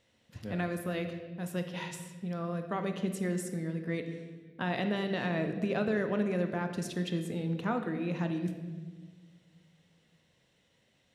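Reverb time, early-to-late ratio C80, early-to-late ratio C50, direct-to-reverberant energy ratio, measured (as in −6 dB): 1.5 s, 9.5 dB, 8.0 dB, 6.0 dB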